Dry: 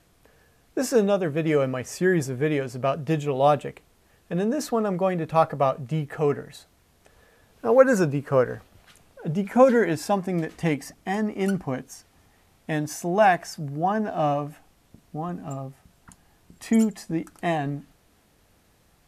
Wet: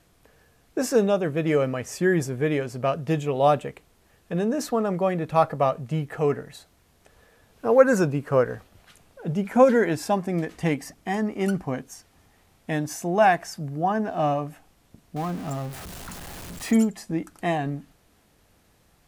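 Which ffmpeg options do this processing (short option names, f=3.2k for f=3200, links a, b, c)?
-filter_complex "[0:a]asettb=1/sr,asplit=3[a][b][c];[a]atrim=end=15.164[d];[b]atrim=start=15.16:end=16.77,asetpts=PTS-STARTPTS,afade=t=in:d=0.004:c=qsin,afade=t=out:st=1.606:d=0.004:c=qsin,aeval=exprs='val(0)+0.5*0.0211*sgn(val(0))':c=same[e];[c]atrim=start=16.766[f];[d][e]acrossfade=d=0.004:c1=hsin:c2=qsin[g];[g][f]acrossfade=d=0.004:c1=qsin:c2=hsin"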